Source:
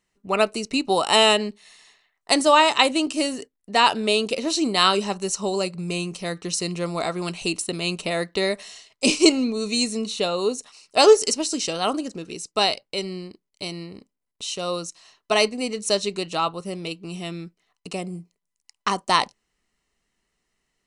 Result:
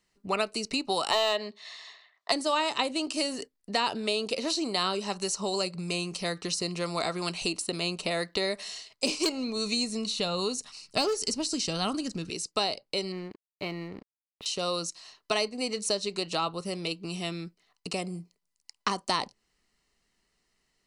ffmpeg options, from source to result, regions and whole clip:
ffmpeg -i in.wav -filter_complex "[0:a]asettb=1/sr,asplit=3[link_01][link_02][link_03];[link_01]atrim=end=1.114[link_04];[link_02]atrim=start=1.11:end=2.32,asetpts=PTS-STARTPTS,afade=type=in:duration=0.004:curve=qsin,afade=type=out:start_time=1.206:duration=0.004:curve=qsin,highpass=frequency=160:width=0.5412,highpass=frequency=160:width=1.3066,equalizer=frequency=190:width_type=q:width=4:gain=-7,equalizer=frequency=290:width_type=q:width=4:gain=-9,equalizer=frequency=650:width_type=q:width=4:gain=8,equalizer=frequency=1100:width_type=q:width=4:gain=9,equalizer=frequency=1900:width_type=q:width=4:gain=7,equalizer=frequency=3600:width_type=q:width=4:gain=8,lowpass=frequency=7000:width=0.5412,lowpass=frequency=7000:width=1.3066,asoftclip=type=hard:threshold=-3.5dB[link_05];[link_03]atrim=start=2.316[link_06];[link_04][link_05]acrossfade=duration=0.004:curve1=hsin:curve2=qsin[link_07];[link_07][link_06]acrossfade=duration=0.004:curve1=qsin:curve2=hsin,asettb=1/sr,asplit=3[link_08][link_09][link_10];[link_08]atrim=end=9.064[link_11];[link_09]atrim=start=9.06:end=12.3,asetpts=PTS-STARTPTS,afade=type=in:duration=0.004:curve=qsin,afade=type=out:start_time=3.236:duration=0.004:curve=qsin,asubboost=boost=8.5:cutoff=210,asoftclip=type=hard:threshold=-10dB[link_12];[link_10]atrim=start=12.296[link_13];[link_11][link_12]acrossfade=duration=0.004:curve1=hsin:curve2=qsin[link_14];[link_14][link_13]acrossfade=duration=0.004:curve1=qsin:curve2=hsin,asettb=1/sr,asplit=3[link_15][link_16][link_17];[link_15]atrim=end=13.124[link_18];[link_16]atrim=start=13.12:end=14.46,asetpts=PTS-STARTPTS,afade=type=in:duration=0.004:curve=qsin,afade=type=out:start_time=1.336:duration=0.004:curve=qsin,lowpass=frequency=1800:width_type=q:width=1.8,aeval=exprs='sgn(val(0))*max(abs(val(0))-0.00188,0)':channel_layout=same[link_19];[link_17]atrim=start=14.456[link_20];[link_18][link_19]acrossfade=duration=0.004:curve1=hsin:curve2=qsin[link_21];[link_21][link_20]acrossfade=duration=0.004:curve1=qsin:curve2=hsin,equalizer=frequency=4600:width_type=o:width=0.34:gain=7,acrossover=split=550|1100[link_22][link_23][link_24];[link_22]acompressor=threshold=-34dB:ratio=4[link_25];[link_23]acompressor=threshold=-35dB:ratio=4[link_26];[link_24]acompressor=threshold=-30dB:ratio=4[link_27];[link_25][link_26][link_27]amix=inputs=3:normalize=0" out.wav

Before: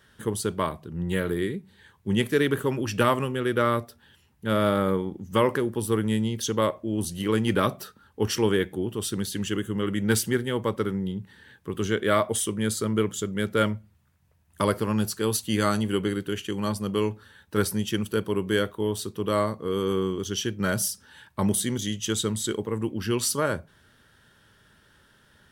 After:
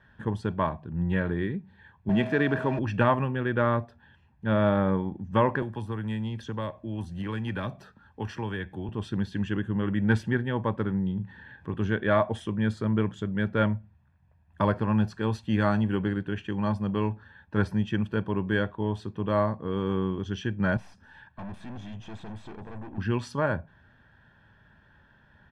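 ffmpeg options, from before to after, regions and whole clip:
ffmpeg -i in.wav -filter_complex "[0:a]asettb=1/sr,asplit=3[link_01][link_02][link_03];[link_01]atrim=end=2.094[link_04];[link_02]atrim=start=2.09:end=2.79,asetpts=PTS-STARTPTS,afade=type=in:duration=0.004:curve=qsin,afade=type=out:start_time=0.696:duration=0.004:curve=qsin,aeval=exprs='val(0)+0.5*0.0266*sgn(val(0))':channel_layout=same,highpass=150,aeval=exprs='val(0)+0.0158*sin(2*PI*640*n/s)':channel_layout=same[link_05];[link_03]atrim=start=2.786[link_06];[link_04][link_05]acrossfade=duration=0.004:curve1=hsin:curve2=qsin[link_07];[link_07][link_06]acrossfade=duration=0.004:curve1=qsin:curve2=hsin,asettb=1/sr,asplit=3[link_08][link_09][link_10];[link_08]atrim=end=5.624[link_11];[link_09]atrim=start=5.62:end=8.89,asetpts=PTS-STARTPTS,afade=type=in:duration=0.004:curve=qsin,afade=type=out:start_time=3.266:duration=0.004:curve=qsin,highshelf=frequency=4800:gain=11,acrossover=split=120|650|1800[link_12][link_13][link_14][link_15];[link_12]acompressor=threshold=-40dB:ratio=3[link_16];[link_13]acompressor=threshold=-35dB:ratio=3[link_17];[link_14]acompressor=threshold=-41dB:ratio=3[link_18];[link_15]acompressor=threshold=-36dB:ratio=3[link_19];[link_16][link_17][link_18][link_19]amix=inputs=4:normalize=0[link_20];[link_10]atrim=start=8.886[link_21];[link_11][link_20]acrossfade=duration=0.004:curve1=hsin:curve2=qsin[link_22];[link_22][link_21]acrossfade=duration=0.004:curve1=qsin:curve2=hsin,asettb=1/sr,asplit=3[link_23][link_24][link_25];[link_23]atrim=end=11.144[link_26];[link_24]atrim=start=11.14:end=11.74,asetpts=PTS-STARTPTS,afade=type=in:duration=0.004:curve=qsin,afade=type=out:start_time=0.596:duration=0.004:curve=qsin,acompressor=mode=upward:threshold=-42dB:ratio=2.5:attack=3.2:release=140:knee=2.83:detection=peak,asplit=2[link_27][link_28];[link_28]adelay=38,volume=-7dB[link_29];[link_27][link_29]amix=inputs=2:normalize=0,atrim=end_sample=26460[link_30];[link_25]atrim=start=11.736[link_31];[link_26][link_30]acrossfade=duration=0.004:curve1=hsin:curve2=qsin[link_32];[link_32][link_31]acrossfade=duration=0.004:curve1=qsin:curve2=hsin,asettb=1/sr,asplit=3[link_33][link_34][link_35];[link_33]atrim=end=20.774[link_36];[link_34]atrim=start=20.77:end=22.98,asetpts=PTS-STARTPTS,afade=type=in:duration=0.004:curve=qsin,afade=type=out:start_time=2.206:duration=0.004:curve=qsin,aeval=exprs='(tanh(79.4*val(0)+0.25)-tanh(0.25))/79.4':channel_layout=same,aecho=1:1:247:0.1,atrim=end_sample=97461[link_37];[link_35]atrim=start=22.976[link_38];[link_36][link_37]acrossfade=duration=0.004:curve1=hsin:curve2=qsin[link_39];[link_39][link_38]acrossfade=duration=0.004:curve1=qsin:curve2=hsin,lowpass=1900,aecho=1:1:1.2:0.5" out.wav

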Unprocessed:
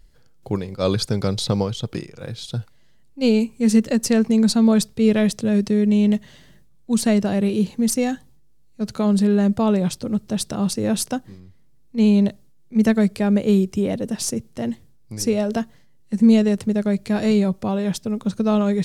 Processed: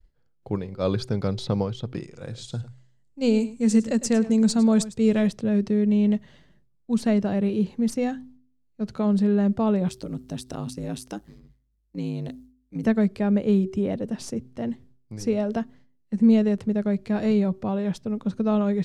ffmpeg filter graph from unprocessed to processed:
ffmpeg -i in.wav -filter_complex "[0:a]asettb=1/sr,asplit=3[link_01][link_02][link_03];[link_01]atrim=end=2.024[link_04];[link_02]atrim=start=2.02:end=5.28,asetpts=PTS-STARTPTS,afade=type=in:duration=0.004:curve=qsin,afade=type=out:start_time=3.256:duration=0.004:curve=qsin,equalizer=frequency=7600:width=1.4:gain=14.5,asoftclip=type=hard:threshold=-5.5dB,aecho=1:1:104:0.158,atrim=end_sample=143766[link_05];[link_03]atrim=start=5.276[link_06];[link_04][link_05]acrossfade=duration=0.004:curve1=hsin:curve2=qsin[link_07];[link_07][link_06]acrossfade=duration=0.004:curve1=qsin:curve2=hsin,asettb=1/sr,asplit=3[link_08][link_09][link_10];[link_08]atrim=end=9.884[link_11];[link_09]atrim=start=9.88:end=12.84,asetpts=PTS-STARTPTS,afade=type=in:duration=0.004:curve=qsin,afade=type=out:start_time=2.956:duration=0.004:curve=qsin,aemphasis=mode=production:type=75kf,acompressor=threshold=-20dB:ratio=6:attack=3.2:release=140:knee=1:detection=peak,aeval=exprs='val(0)*sin(2*PI*53*n/s)':channel_layout=same[link_12];[link_10]atrim=start=12.836[link_13];[link_11][link_12]acrossfade=duration=0.004:curve1=hsin:curve2=qsin[link_14];[link_14][link_13]acrossfade=duration=0.004:curve1=qsin:curve2=hsin,agate=range=-33dB:threshold=-44dB:ratio=3:detection=peak,aemphasis=mode=reproduction:type=75kf,bandreject=frequency=127.1:width_type=h:width=4,bandreject=frequency=254.2:width_type=h:width=4,bandreject=frequency=381.3:width_type=h:width=4,volume=-3.5dB" out.wav

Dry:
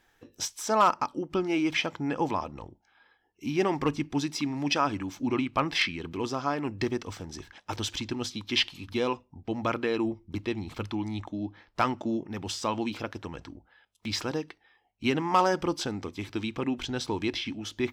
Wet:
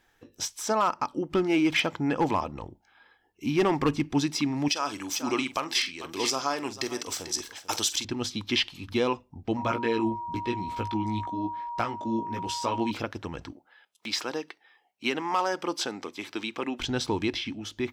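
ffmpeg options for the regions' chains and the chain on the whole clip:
ffmpeg -i in.wav -filter_complex "[0:a]asettb=1/sr,asplit=3[link_01][link_02][link_03];[link_01]atrim=end=1.174[link_04];[link_02]atrim=start=1.17:end=4.06,asetpts=PTS-STARTPTS,afade=type=in:duration=0.004:curve=qsin,afade=type=out:start_time=2.886:duration=0.004:curve=qsin,equalizer=frequency=5700:width=5.5:gain=-2.5,asoftclip=type=hard:threshold=-20.5dB[link_05];[link_03]atrim=start=4.056[link_06];[link_04][link_05]acrossfade=duration=0.004:curve1=hsin:curve2=qsin[link_07];[link_07][link_06]acrossfade=duration=0.004:curve1=qsin:curve2=hsin,asettb=1/sr,asplit=3[link_08][link_09][link_10];[link_08]atrim=end=4.684[link_11];[link_09]atrim=start=4.68:end=8.05,asetpts=PTS-STARTPTS,afade=type=in:duration=0.004:curve=qsin,afade=type=out:start_time=3.366:duration=0.004:curve=qsin,bass=frequency=250:gain=-13,treble=frequency=4000:gain=15,aecho=1:1:45|443:0.2|0.158,atrim=end_sample=148617[link_12];[link_10]atrim=start=8.046[link_13];[link_11][link_12]acrossfade=duration=0.004:curve1=hsin:curve2=qsin[link_14];[link_14][link_13]acrossfade=duration=0.004:curve1=qsin:curve2=hsin,asettb=1/sr,asplit=3[link_15][link_16][link_17];[link_15]atrim=end=9.574[link_18];[link_16]atrim=start=9.57:end=12.91,asetpts=PTS-STARTPTS,afade=type=in:duration=0.004:curve=qsin,afade=type=out:start_time=3.336:duration=0.004:curve=qsin,flanger=delay=16:depth=2.5:speed=1,aeval=exprs='val(0)+0.0158*sin(2*PI*950*n/s)':channel_layout=same[link_19];[link_17]atrim=start=12.906[link_20];[link_18][link_19]acrossfade=duration=0.004:curve1=hsin:curve2=qsin[link_21];[link_21][link_20]acrossfade=duration=0.004:curve1=qsin:curve2=hsin,asettb=1/sr,asplit=3[link_22][link_23][link_24];[link_22]atrim=end=13.524[link_25];[link_23]atrim=start=13.52:end=16.8,asetpts=PTS-STARTPTS,afade=type=in:duration=0.004:curve=qsin,afade=type=out:start_time=3.276:duration=0.004:curve=qsin,highpass=200,lowshelf=frequency=270:gain=-11.5[link_26];[link_24]atrim=start=16.796[link_27];[link_25][link_26]acrossfade=duration=0.004:curve1=hsin:curve2=qsin[link_28];[link_28][link_27]acrossfade=duration=0.004:curve1=qsin:curve2=hsin,alimiter=limit=-18dB:level=0:latency=1:release=407,dynaudnorm=framelen=110:gausssize=13:maxgain=3.5dB" out.wav

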